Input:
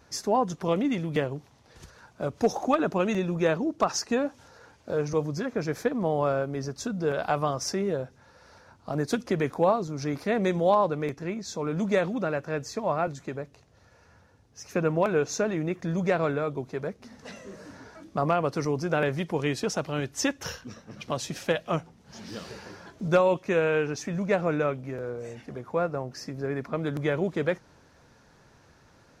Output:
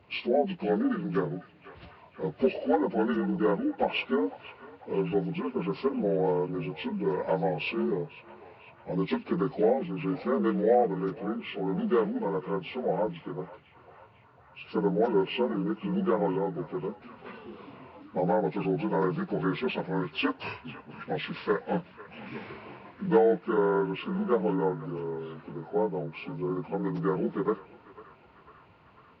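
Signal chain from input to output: frequency axis rescaled in octaves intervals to 75%; peaking EQ 62 Hz +6 dB 0.77 oct; band-passed feedback delay 498 ms, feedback 76%, band-pass 1.5 kHz, level -15 dB

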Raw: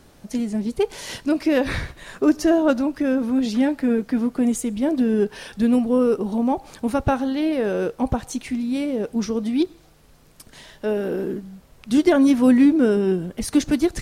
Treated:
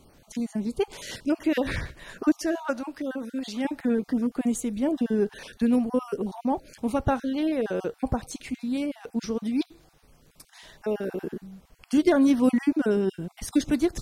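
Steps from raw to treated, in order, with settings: random holes in the spectrogram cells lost 21%; 2.41–3.65 s: bass shelf 330 Hz -11 dB; trim -4 dB

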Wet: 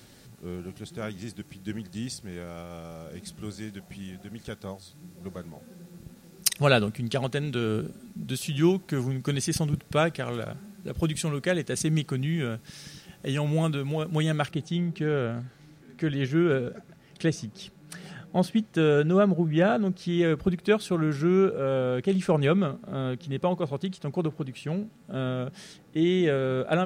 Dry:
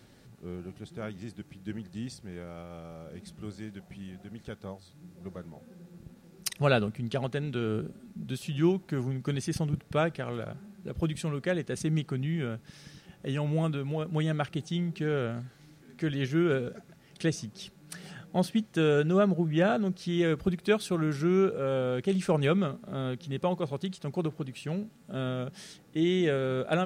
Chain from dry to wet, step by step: treble shelf 3.5 kHz +8.5 dB, from 14.51 s -4 dB; trim +3 dB

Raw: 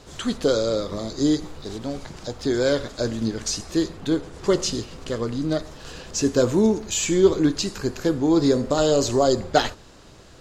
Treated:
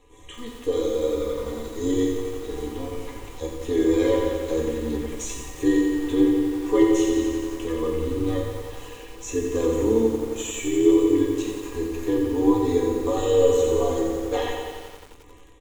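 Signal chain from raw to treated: peaking EQ 120 Hz +4.5 dB 2.9 oct; level rider gain up to 11 dB; granular stretch 1.5×, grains 25 ms; static phaser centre 970 Hz, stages 8; feedback comb 110 Hz, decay 0.5 s, harmonics odd, mix 80%; echo from a far wall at 22 m, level -16 dB; on a send at -2.5 dB: reverberation RT60 1.0 s, pre-delay 3 ms; on the sum: bit-crushed delay 88 ms, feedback 80%, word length 8-bit, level -6.5 dB; trim +4 dB

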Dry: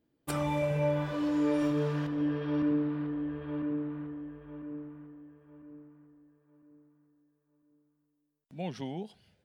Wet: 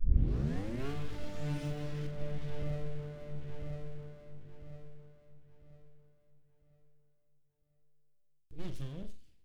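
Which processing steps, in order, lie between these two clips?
tape start-up on the opening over 0.91 s; full-wave rectifier; amplifier tone stack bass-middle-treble 10-0-1; on a send: flutter echo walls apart 7.3 m, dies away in 0.29 s; on the sum: trim +16.5 dB

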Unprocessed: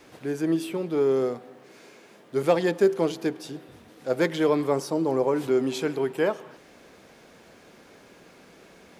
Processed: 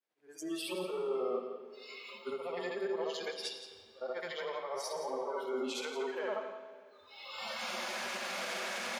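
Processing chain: short-time spectra conjugated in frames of 175 ms; recorder AGC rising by 15 dB/s; spectral noise reduction 26 dB; frequency weighting A; reverse; compression 6:1, threshold -38 dBFS, peak gain reduction 15 dB; reverse; peak limiter -34.5 dBFS, peak gain reduction 7 dB; on a send: delay 172 ms -10 dB; on the sum: algorithmic reverb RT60 3.3 s, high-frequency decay 0.8×, pre-delay 40 ms, DRR 8 dB; three bands expanded up and down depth 40%; trim +5 dB

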